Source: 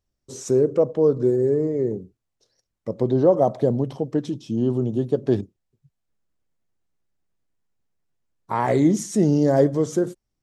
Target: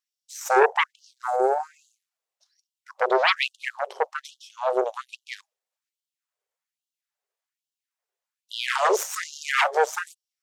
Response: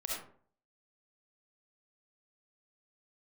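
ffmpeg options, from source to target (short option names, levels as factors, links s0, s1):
-filter_complex "[0:a]asettb=1/sr,asplit=3[s0][s1][s2];[s0]atrim=end=0.894[s3];[s1]atrim=start=0.89:end=2.96,asetpts=PTS-STARTPTS,afade=t=in:d=0.004:c=qsin,afade=t=out:st=2.066:d=0.004:c=qsin,acrossover=split=390|3000[s4][s5][s6];[s5]acompressor=threshold=0.0224:ratio=6[s7];[s4][s7][s6]amix=inputs=3:normalize=0[s8];[s2]atrim=start=2.956[s9];[s3][s8]acrossfade=d=0.004:c1=hsin:c2=qsin[s10];[s10][s9]acrossfade=d=0.004:c1=qsin:c2=hsin,aeval=exprs='0.531*(cos(1*acos(clip(val(0)/0.531,-1,1)))-cos(1*PI/2))+0.188*(cos(8*acos(clip(val(0)/0.531,-1,1)))-cos(8*PI/2))':c=same,afftfilt=real='re*gte(b*sr/1024,360*pow(2800/360,0.5+0.5*sin(2*PI*1.2*pts/sr)))':imag='im*gte(b*sr/1024,360*pow(2800/360,0.5+0.5*sin(2*PI*1.2*pts/sr)))':win_size=1024:overlap=0.75"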